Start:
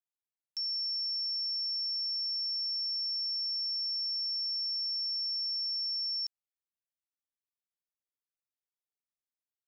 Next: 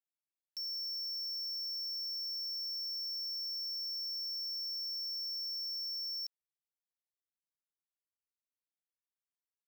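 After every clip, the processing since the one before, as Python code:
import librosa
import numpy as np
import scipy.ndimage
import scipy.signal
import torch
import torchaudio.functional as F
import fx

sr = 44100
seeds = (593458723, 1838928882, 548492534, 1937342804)

y = fx.leveller(x, sr, passes=3)
y = y * librosa.db_to_amplitude(-7.0)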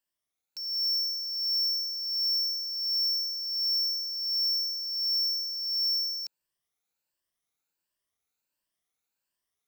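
y = fx.spec_ripple(x, sr, per_octave=1.3, drift_hz=1.4, depth_db=10)
y = fx.rider(y, sr, range_db=10, speed_s=0.5)
y = y * librosa.db_to_amplitude(8.5)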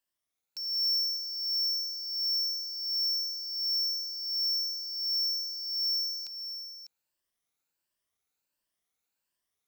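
y = x + 10.0 ** (-11.5 / 20.0) * np.pad(x, (int(599 * sr / 1000.0), 0))[:len(x)]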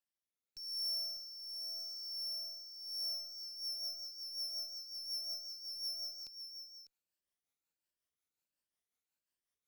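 y = fx.diode_clip(x, sr, knee_db=-38.5)
y = fx.rotary_switch(y, sr, hz=0.85, then_hz=5.5, switch_at_s=2.84)
y = y * librosa.db_to_amplitude(-5.5)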